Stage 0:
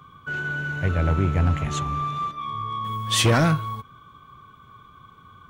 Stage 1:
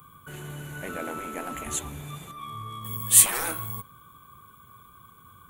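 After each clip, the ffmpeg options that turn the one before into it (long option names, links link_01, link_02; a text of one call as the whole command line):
ffmpeg -i in.wav -af "afftfilt=real='re*lt(hypot(re,im),0.282)':imag='im*lt(hypot(re,im),0.282)':win_size=1024:overlap=0.75,bandreject=frequency=136.4:width_type=h:width=4,bandreject=frequency=272.8:width_type=h:width=4,bandreject=frequency=409.2:width_type=h:width=4,bandreject=frequency=545.6:width_type=h:width=4,bandreject=frequency=682:width_type=h:width=4,bandreject=frequency=818.4:width_type=h:width=4,bandreject=frequency=954.8:width_type=h:width=4,bandreject=frequency=1091.2:width_type=h:width=4,bandreject=frequency=1227.6:width_type=h:width=4,bandreject=frequency=1364:width_type=h:width=4,bandreject=frequency=1500.4:width_type=h:width=4,bandreject=frequency=1636.8:width_type=h:width=4,bandreject=frequency=1773.2:width_type=h:width=4,bandreject=frequency=1909.6:width_type=h:width=4,bandreject=frequency=2046:width_type=h:width=4,bandreject=frequency=2182.4:width_type=h:width=4,bandreject=frequency=2318.8:width_type=h:width=4,bandreject=frequency=2455.2:width_type=h:width=4,bandreject=frequency=2591.6:width_type=h:width=4,bandreject=frequency=2728:width_type=h:width=4,bandreject=frequency=2864.4:width_type=h:width=4,bandreject=frequency=3000.8:width_type=h:width=4,bandreject=frequency=3137.2:width_type=h:width=4,bandreject=frequency=3273.6:width_type=h:width=4,bandreject=frequency=3410:width_type=h:width=4,bandreject=frequency=3546.4:width_type=h:width=4,bandreject=frequency=3682.8:width_type=h:width=4,bandreject=frequency=3819.2:width_type=h:width=4,bandreject=frequency=3955.6:width_type=h:width=4,bandreject=frequency=4092:width_type=h:width=4,bandreject=frequency=4228.4:width_type=h:width=4,bandreject=frequency=4364.8:width_type=h:width=4,bandreject=frequency=4501.2:width_type=h:width=4,bandreject=frequency=4637.6:width_type=h:width=4,bandreject=frequency=4774:width_type=h:width=4,bandreject=frequency=4910.4:width_type=h:width=4,bandreject=frequency=5046.8:width_type=h:width=4,bandreject=frequency=5183.2:width_type=h:width=4,aexciter=amount=13.2:drive=5.3:freq=7800,volume=-4dB" out.wav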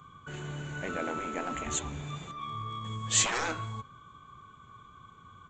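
ffmpeg -i in.wav -af "aresample=16000,aresample=44100" out.wav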